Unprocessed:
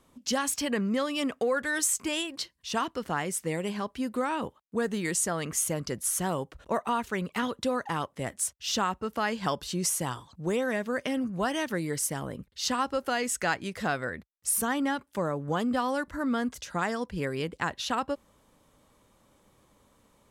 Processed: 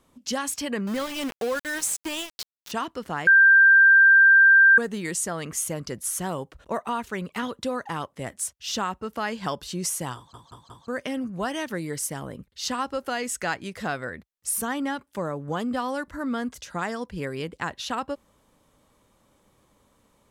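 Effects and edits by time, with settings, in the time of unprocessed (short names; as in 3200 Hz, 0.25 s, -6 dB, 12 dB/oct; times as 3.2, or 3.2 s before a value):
0.87–2.72 sample gate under -31.5 dBFS
3.27–4.78 bleep 1580 Hz -11 dBFS
10.16 stutter in place 0.18 s, 4 plays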